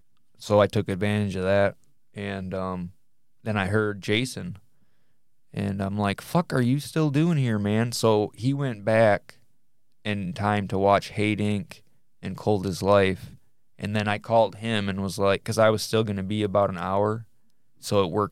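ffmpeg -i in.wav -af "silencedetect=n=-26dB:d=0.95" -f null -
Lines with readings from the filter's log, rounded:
silence_start: 4.41
silence_end: 5.57 | silence_duration: 1.16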